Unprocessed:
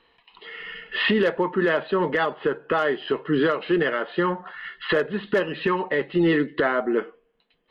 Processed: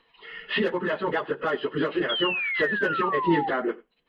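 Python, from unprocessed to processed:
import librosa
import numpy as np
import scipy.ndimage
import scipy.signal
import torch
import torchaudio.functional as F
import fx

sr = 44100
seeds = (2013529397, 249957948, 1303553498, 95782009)

p1 = fx.hum_notches(x, sr, base_hz=60, count=4)
p2 = fx.stretch_vocoder_free(p1, sr, factor=0.53)
p3 = fx.spec_paint(p2, sr, seeds[0], shape='fall', start_s=2.09, length_s=1.4, low_hz=770.0, high_hz=3400.0, level_db=-28.0)
y = p3 + fx.echo_single(p3, sr, ms=92, db=-22.0, dry=0)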